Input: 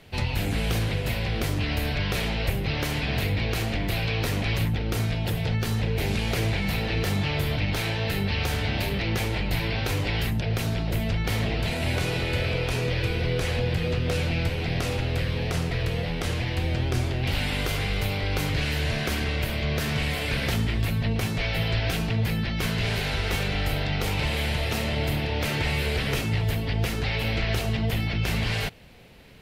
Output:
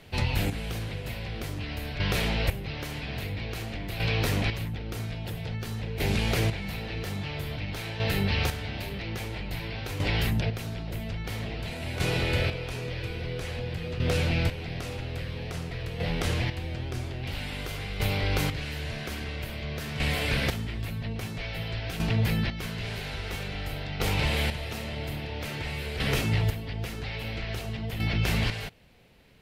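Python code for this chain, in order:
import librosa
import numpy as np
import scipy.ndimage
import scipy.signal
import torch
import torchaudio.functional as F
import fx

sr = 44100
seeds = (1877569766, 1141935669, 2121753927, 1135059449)

y = fx.chopper(x, sr, hz=0.5, depth_pct=60, duty_pct=25)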